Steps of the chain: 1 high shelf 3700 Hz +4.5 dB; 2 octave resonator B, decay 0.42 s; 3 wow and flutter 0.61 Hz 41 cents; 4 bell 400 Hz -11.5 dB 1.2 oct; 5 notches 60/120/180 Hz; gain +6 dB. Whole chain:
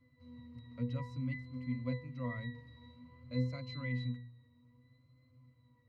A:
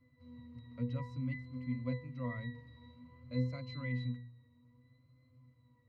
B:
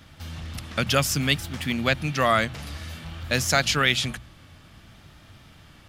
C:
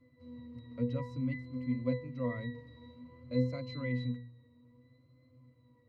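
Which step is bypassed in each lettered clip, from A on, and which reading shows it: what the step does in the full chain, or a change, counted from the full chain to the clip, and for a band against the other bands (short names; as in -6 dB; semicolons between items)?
1, 4 kHz band -2.5 dB; 2, 125 Hz band -14.0 dB; 4, 500 Hz band +7.5 dB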